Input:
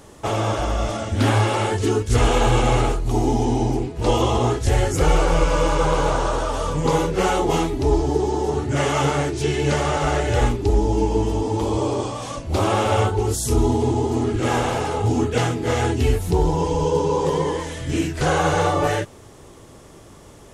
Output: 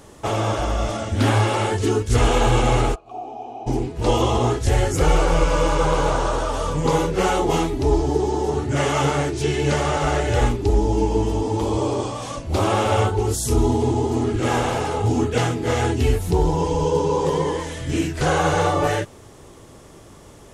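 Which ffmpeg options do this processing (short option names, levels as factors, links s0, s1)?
-filter_complex "[0:a]asplit=3[s0][s1][s2];[s0]afade=t=out:st=2.94:d=0.02[s3];[s1]asplit=3[s4][s5][s6];[s4]bandpass=f=730:t=q:w=8,volume=1[s7];[s5]bandpass=f=1090:t=q:w=8,volume=0.501[s8];[s6]bandpass=f=2440:t=q:w=8,volume=0.355[s9];[s7][s8][s9]amix=inputs=3:normalize=0,afade=t=in:st=2.94:d=0.02,afade=t=out:st=3.66:d=0.02[s10];[s2]afade=t=in:st=3.66:d=0.02[s11];[s3][s10][s11]amix=inputs=3:normalize=0"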